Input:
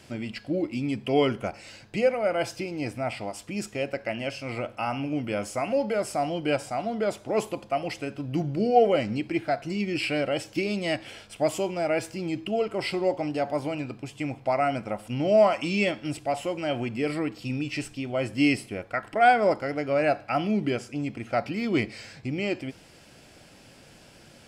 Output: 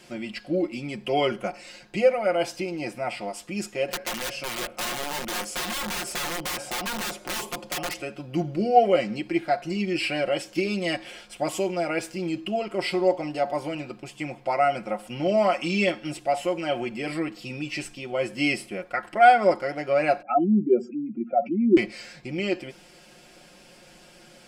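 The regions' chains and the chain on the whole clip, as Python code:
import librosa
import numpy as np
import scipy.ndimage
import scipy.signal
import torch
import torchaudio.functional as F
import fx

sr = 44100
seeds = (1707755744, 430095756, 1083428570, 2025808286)

y = fx.chain(x, sr, fx.overflow_wrap(gain_db=26.5),
    fx.band_squash(depth_pct=70), at=(3.88, 8.02))
y = fx.chain(y, sr, fx.spec_expand(power=2.7),
    fx.cabinet(low_hz=170.0, low_slope=24, high_hz=8500.0, hz=(240.0, 370.0, 1000.0, 4600.0), db=(10, 9, 10, -5)), at=(20.22, 21.77))
y = fx.peak_eq(y, sr, hz=100.0, db=-11.5, octaves=1.1)
y = y + 0.7 * np.pad(y, (int(5.6 * sr / 1000.0), 0))[:len(y)]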